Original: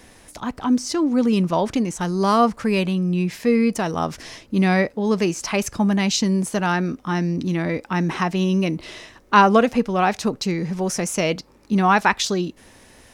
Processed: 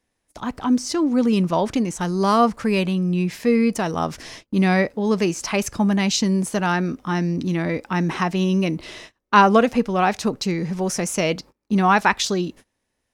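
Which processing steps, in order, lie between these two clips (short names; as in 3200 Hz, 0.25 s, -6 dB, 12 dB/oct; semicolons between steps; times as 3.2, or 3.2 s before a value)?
gate -40 dBFS, range -27 dB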